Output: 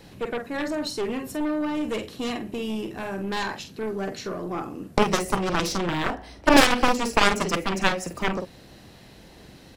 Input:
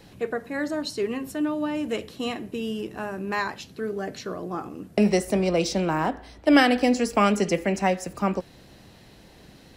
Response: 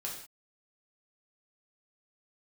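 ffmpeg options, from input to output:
-filter_complex "[0:a]asplit=2[a][b];[b]adelay=46,volume=-8dB[c];[a][c]amix=inputs=2:normalize=0,aeval=exprs='0.531*(cos(1*acos(clip(val(0)/0.531,-1,1)))-cos(1*PI/2))+0.188*(cos(2*acos(clip(val(0)/0.531,-1,1)))-cos(2*PI/2))+0.0299*(cos(6*acos(clip(val(0)/0.531,-1,1)))-cos(6*PI/2))+0.168*(cos(7*acos(clip(val(0)/0.531,-1,1)))-cos(7*PI/2))':c=same"

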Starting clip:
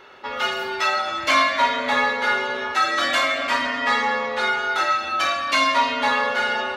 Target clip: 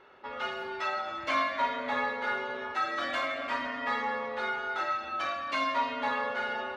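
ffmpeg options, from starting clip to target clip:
-af "lowpass=f=1.8k:p=1,volume=-8.5dB"

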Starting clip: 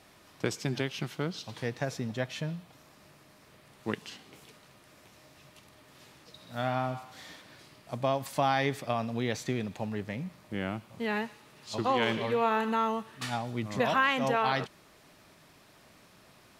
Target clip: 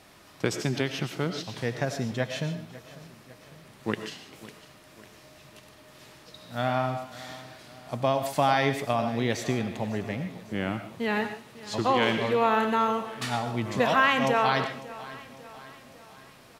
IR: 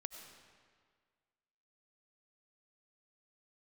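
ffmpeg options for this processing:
-filter_complex "[0:a]aecho=1:1:550|1100|1650|2200:0.126|0.0655|0.034|0.0177[a];[1:a]atrim=start_sample=2205,afade=t=out:st=0.21:d=0.01,atrim=end_sample=9702[b];[a][b]afir=irnorm=-1:irlink=0,volume=8dB"

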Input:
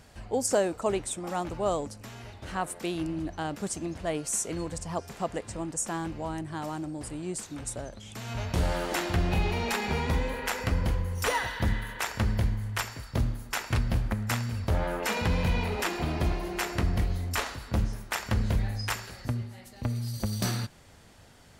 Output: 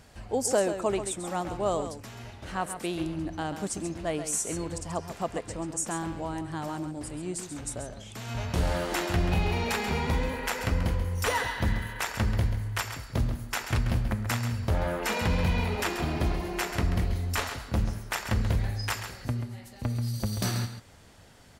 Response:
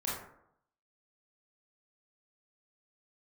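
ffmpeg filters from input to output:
-af "aecho=1:1:135:0.335"

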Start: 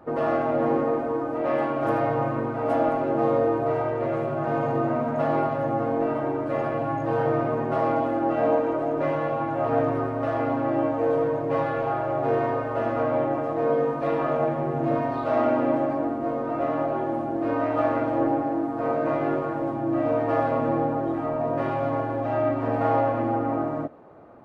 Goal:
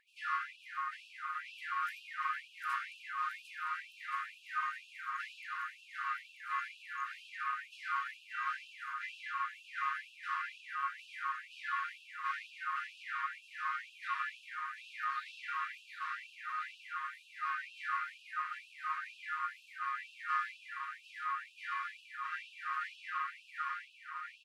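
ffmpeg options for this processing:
-af "aecho=1:1:750|1425|2032|2579|3071:0.631|0.398|0.251|0.158|0.1,afftfilt=real='re*gte(b*sr/1024,970*pow(2500/970,0.5+0.5*sin(2*PI*2.1*pts/sr)))':imag='im*gte(b*sr/1024,970*pow(2500/970,0.5+0.5*sin(2*PI*2.1*pts/sr)))':win_size=1024:overlap=0.75,volume=-1dB"

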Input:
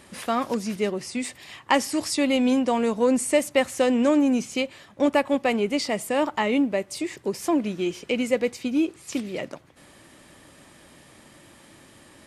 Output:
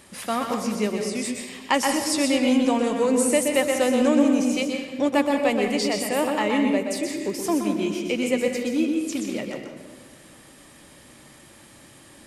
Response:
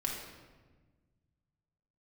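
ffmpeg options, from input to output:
-filter_complex "[0:a]highshelf=f=5.4k:g=6,asplit=2[a][b];[1:a]atrim=start_sample=2205,adelay=124[c];[b][c]afir=irnorm=-1:irlink=0,volume=-5.5dB[d];[a][d]amix=inputs=2:normalize=0,volume=-1.5dB"

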